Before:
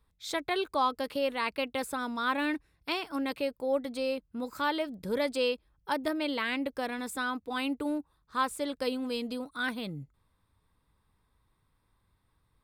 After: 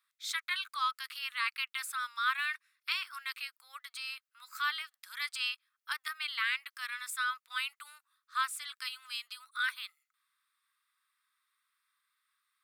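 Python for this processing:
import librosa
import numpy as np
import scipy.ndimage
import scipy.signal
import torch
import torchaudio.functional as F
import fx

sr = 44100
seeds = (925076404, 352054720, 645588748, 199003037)

y = scipy.signal.sosfilt(scipy.signal.cheby1(5, 1.0, 1200.0, 'highpass', fs=sr, output='sos'), x)
y = F.gain(torch.from_numpy(y), 2.0).numpy()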